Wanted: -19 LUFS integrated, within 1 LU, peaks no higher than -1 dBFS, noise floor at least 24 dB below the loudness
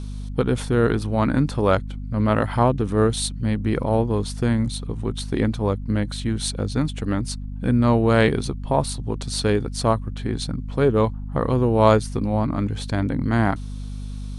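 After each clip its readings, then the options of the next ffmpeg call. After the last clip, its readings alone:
hum 50 Hz; highest harmonic 250 Hz; hum level -29 dBFS; loudness -22.5 LUFS; peak level -2.5 dBFS; loudness target -19.0 LUFS
-> -af "bandreject=f=50:t=h:w=6,bandreject=f=100:t=h:w=6,bandreject=f=150:t=h:w=6,bandreject=f=200:t=h:w=6,bandreject=f=250:t=h:w=6"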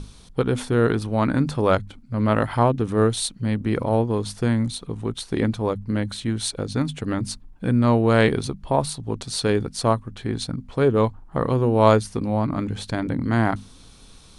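hum not found; loudness -23.0 LUFS; peak level -2.0 dBFS; loudness target -19.0 LUFS
-> -af "volume=1.58,alimiter=limit=0.891:level=0:latency=1"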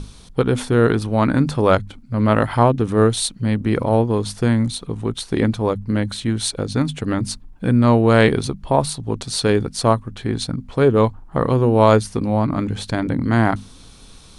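loudness -19.0 LUFS; peak level -1.0 dBFS; noise floor -44 dBFS

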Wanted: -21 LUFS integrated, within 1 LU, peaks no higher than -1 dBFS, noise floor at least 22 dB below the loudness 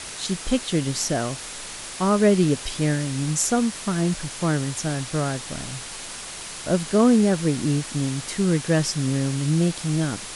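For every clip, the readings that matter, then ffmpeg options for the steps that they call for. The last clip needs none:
noise floor -36 dBFS; noise floor target -46 dBFS; loudness -23.5 LUFS; peak level -7.0 dBFS; loudness target -21.0 LUFS
-> -af "afftdn=nr=10:nf=-36"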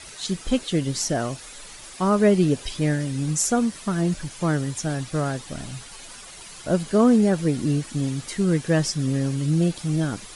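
noise floor -42 dBFS; noise floor target -45 dBFS
-> -af "afftdn=nr=6:nf=-42"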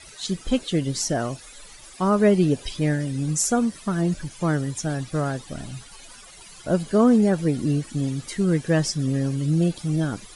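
noise floor -46 dBFS; loudness -23.0 LUFS; peak level -8.0 dBFS; loudness target -21.0 LUFS
-> -af "volume=1.26"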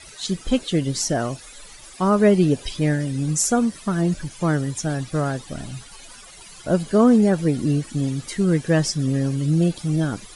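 loudness -21.0 LUFS; peak level -6.0 dBFS; noise floor -44 dBFS

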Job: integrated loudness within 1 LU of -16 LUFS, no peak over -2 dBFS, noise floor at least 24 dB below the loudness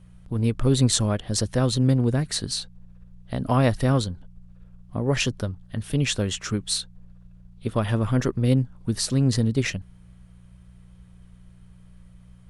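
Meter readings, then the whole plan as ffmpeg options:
hum 60 Hz; highest harmonic 180 Hz; hum level -48 dBFS; loudness -24.0 LUFS; peak level -6.0 dBFS; loudness target -16.0 LUFS
-> -af "bandreject=f=60:t=h:w=4,bandreject=f=120:t=h:w=4,bandreject=f=180:t=h:w=4"
-af "volume=2.51,alimiter=limit=0.794:level=0:latency=1"

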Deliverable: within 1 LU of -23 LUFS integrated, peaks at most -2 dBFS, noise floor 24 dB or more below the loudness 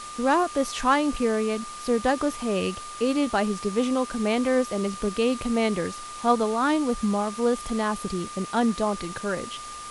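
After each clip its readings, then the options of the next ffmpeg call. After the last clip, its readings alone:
steady tone 1.2 kHz; tone level -37 dBFS; noise floor -38 dBFS; noise floor target -50 dBFS; loudness -25.5 LUFS; peak level -9.0 dBFS; loudness target -23.0 LUFS
-> -af "bandreject=f=1200:w=30"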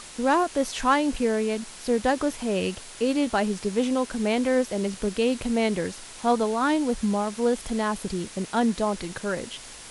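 steady tone not found; noise floor -43 dBFS; noise floor target -50 dBFS
-> -af "afftdn=nr=7:nf=-43"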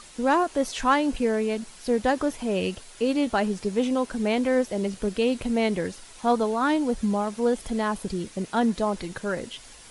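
noise floor -48 dBFS; noise floor target -50 dBFS
-> -af "afftdn=nr=6:nf=-48"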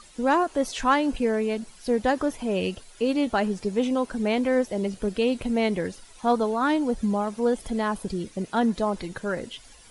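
noise floor -51 dBFS; loudness -26.0 LUFS; peak level -10.0 dBFS; loudness target -23.0 LUFS
-> -af "volume=1.41"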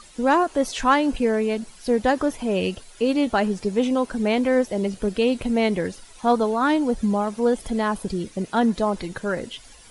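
loudness -23.0 LUFS; peak level -7.0 dBFS; noise floor -48 dBFS

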